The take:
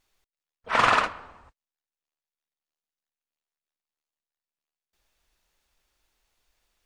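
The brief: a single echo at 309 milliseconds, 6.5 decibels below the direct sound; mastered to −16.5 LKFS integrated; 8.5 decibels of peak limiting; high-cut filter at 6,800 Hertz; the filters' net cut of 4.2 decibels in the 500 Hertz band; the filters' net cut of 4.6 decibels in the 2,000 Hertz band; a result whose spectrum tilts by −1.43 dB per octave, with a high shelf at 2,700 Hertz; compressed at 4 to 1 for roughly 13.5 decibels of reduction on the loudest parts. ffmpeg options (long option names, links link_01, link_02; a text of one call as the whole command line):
ffmpeg -i in.wav -af "lowpass=6800,equalizer=frequency=500:width_type=o:gain=-5,equalizer=frequency=2000:width_type=o:gain=-4,highshelf=frequency=2700:gain=-4.5,acompressor=threshold=-36dB:ratio=4,alimiter=level_in=7.5dB:limit=-24dB:level=0:latency=1,volume=-7.5dB,aecho=1:1:309:0.473,volume=28dB" out.wav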